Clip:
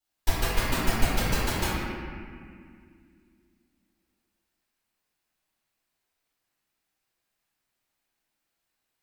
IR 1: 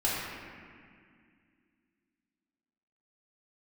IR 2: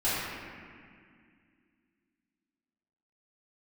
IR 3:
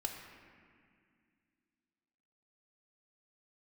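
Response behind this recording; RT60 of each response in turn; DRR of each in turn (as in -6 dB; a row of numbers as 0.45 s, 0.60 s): 2; 2.1 s, 2.1 s, 2.1 s; -8.0 dB, -13.0 dB, 1.5 dB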